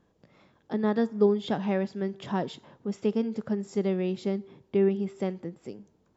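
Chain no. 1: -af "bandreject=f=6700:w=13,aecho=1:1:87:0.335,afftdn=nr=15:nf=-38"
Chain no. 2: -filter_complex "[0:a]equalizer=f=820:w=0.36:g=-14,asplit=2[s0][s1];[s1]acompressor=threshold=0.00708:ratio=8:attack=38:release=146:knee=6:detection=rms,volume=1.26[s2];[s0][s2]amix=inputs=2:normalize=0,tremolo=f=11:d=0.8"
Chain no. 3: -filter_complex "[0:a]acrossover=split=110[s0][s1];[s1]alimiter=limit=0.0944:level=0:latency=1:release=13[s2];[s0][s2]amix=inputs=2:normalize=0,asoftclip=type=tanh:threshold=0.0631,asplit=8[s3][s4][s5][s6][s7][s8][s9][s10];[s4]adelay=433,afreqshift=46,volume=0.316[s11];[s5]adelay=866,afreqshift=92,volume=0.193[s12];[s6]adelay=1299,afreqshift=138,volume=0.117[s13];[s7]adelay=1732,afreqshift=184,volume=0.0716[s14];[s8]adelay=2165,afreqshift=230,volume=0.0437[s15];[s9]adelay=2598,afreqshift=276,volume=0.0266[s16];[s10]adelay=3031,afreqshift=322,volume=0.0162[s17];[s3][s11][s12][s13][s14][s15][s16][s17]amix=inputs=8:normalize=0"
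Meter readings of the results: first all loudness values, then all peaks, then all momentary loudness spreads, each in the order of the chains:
-28.5 LUFS, -37.5 LUFS, -33.5 LUFS; -11.0 dBFS, -21.0 dBFS, -21.5 dBFS; 13 LU, 10 LU, 7 LU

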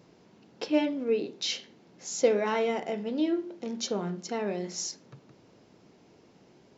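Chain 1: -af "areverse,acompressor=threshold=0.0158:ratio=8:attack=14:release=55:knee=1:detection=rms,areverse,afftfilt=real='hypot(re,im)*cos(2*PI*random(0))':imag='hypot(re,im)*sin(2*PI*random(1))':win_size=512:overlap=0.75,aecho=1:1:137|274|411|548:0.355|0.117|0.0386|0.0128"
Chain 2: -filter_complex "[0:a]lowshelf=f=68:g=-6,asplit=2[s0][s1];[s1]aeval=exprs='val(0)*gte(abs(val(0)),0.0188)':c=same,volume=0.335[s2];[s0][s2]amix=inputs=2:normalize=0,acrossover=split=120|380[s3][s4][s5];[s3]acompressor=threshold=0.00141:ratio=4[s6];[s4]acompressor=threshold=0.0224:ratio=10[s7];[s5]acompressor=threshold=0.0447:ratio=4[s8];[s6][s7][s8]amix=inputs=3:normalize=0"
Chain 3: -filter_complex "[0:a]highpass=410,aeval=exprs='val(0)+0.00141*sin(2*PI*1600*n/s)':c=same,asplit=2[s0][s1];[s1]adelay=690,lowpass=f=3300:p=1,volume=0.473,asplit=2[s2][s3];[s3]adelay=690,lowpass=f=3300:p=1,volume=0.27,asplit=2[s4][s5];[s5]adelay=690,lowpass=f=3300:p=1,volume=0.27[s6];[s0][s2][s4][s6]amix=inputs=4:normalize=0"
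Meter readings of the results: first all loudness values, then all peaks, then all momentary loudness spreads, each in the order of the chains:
-44.5 LUFS, -31.5 LUFS, -32.5 LUFS; -30.5 dBFS, -15.5 dBFS, -14.0 dBFS; 21 LU, 8 LU, 16 LU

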